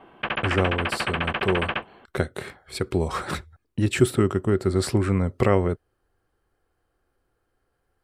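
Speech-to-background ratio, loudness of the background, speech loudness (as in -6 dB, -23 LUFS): 2.0 dB, -27.0 LUFS, -25.0 LUFS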